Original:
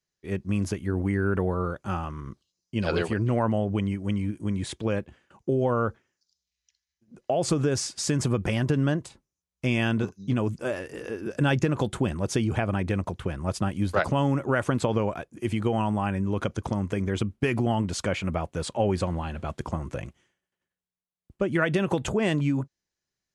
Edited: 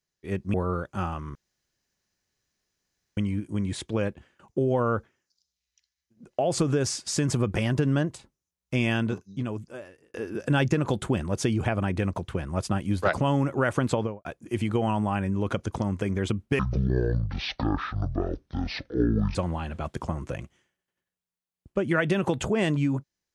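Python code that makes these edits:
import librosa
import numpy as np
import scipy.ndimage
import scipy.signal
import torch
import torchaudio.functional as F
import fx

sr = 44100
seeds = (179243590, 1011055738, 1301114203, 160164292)

y = fx.studio_fade_out(x, sr, start_s=14.83, length_s=0.33)
y = fx.edit(y, sr, fx.cut(start_s=0.54, length_s=0.91),
    fx.room_tone_fill(start_s=2.26, length_s=1.82),
    fx.fade_out_span(start_s=9.76, length_s=1.29),
    fx.speed_span(start_s=17.5, length_s=1.49, speed=0.54), tone=tone)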